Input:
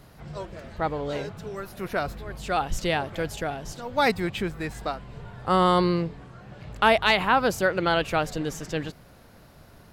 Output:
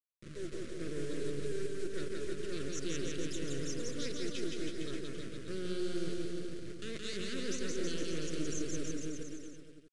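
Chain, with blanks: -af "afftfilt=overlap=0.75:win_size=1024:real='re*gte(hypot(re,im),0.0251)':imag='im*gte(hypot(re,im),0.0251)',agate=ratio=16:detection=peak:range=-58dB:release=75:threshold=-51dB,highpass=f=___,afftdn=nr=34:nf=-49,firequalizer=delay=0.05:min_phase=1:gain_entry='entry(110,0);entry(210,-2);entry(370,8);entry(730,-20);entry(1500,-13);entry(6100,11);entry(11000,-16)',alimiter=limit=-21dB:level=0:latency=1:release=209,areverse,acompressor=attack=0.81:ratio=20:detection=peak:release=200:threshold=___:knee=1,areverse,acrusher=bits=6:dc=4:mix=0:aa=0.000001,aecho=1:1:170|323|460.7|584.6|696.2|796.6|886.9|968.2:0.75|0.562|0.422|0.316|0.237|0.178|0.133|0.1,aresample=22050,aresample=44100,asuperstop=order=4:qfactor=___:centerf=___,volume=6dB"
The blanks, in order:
270, -36dB, 0.99, 830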